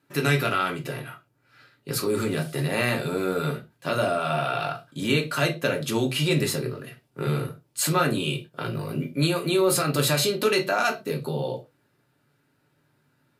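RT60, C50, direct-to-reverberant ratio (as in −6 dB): non-exponential decay, 15.0 dB, 2.0 dB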